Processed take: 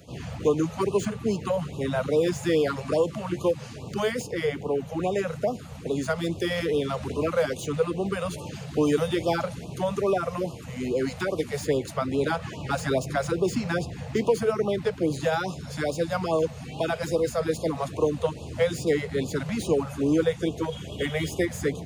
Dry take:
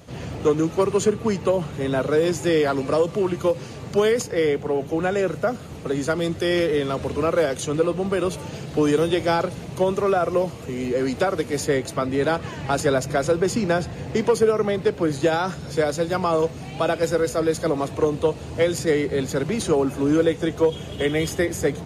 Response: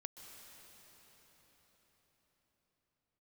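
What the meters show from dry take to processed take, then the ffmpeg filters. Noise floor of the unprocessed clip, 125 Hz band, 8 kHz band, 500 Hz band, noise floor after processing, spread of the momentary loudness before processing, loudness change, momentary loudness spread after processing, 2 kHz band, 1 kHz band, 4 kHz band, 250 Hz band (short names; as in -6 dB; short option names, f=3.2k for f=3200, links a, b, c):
-36 dBFS, -3.0 dB, -6.0 dB, -5.0 dB, -40 dBFS, 6 LU, -4.5 dB, 6 LU, -4.5 dB, -5.0 dB, -4.0 dB, -4.0 dB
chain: -filter_complex "[0:a]acrossover=split=180|2800[a][b][c];[c]asoftclip=type=hard:threshold=-33.5dB[d];[a][b][d]amix=inputs=3:normalize=0,afftfilt=real='re*(1-between(b*sr/1024,290*pow(1800/290,0.5+0.5*sin(2*PI*2.4*pts/sr))/1.41,290*pow(1800/290,0.5+0.5*sin(2*PI*2.4*pts/sr))*1.41))':imag='im*(1-between(b*sr/1024,290*pow(1800/290,0.5+0.5*sin(2*PI*2.4*pts/sr))/1.41,290*pow(1800/290,0.5+0.5*sin(2*PI*2.4*pts/sr))*1.41))':win_size=1024:overlap=0.75,volume=-3dB"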